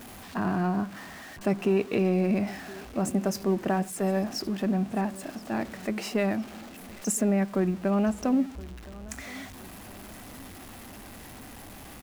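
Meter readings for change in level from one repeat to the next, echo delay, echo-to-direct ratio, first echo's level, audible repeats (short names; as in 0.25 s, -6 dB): -7.5 dB, 1.02 s, -19.5 dB, -20.5 dB, 2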